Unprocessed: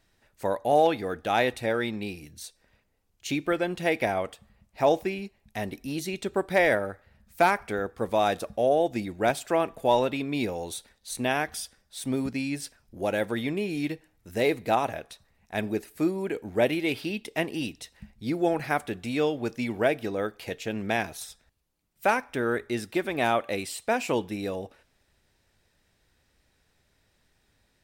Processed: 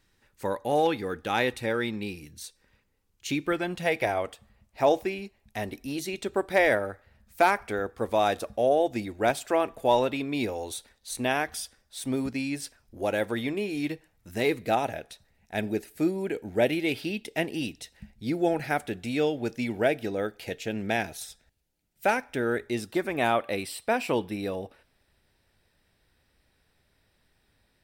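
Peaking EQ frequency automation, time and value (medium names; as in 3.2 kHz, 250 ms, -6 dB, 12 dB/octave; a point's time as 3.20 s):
peaking EQ -13.5 dB 0.22 oct
3.47 s 670 Hz
4.22 s 170 Hz
13.83 s 170 Hz
14.77 s 1.1 kHz
22.64 s 1.1 kHz
23.34 s 6.7 kHz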